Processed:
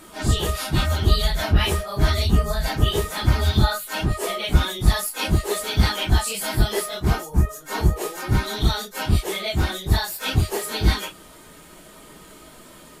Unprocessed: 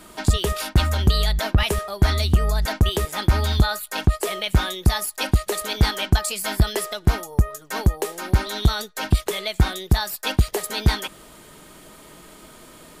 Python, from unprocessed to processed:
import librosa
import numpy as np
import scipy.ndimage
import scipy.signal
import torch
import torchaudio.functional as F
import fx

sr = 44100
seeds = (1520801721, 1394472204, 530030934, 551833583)

y = fx.phase_scramble(x, sr, seeds[0], window_ms=100)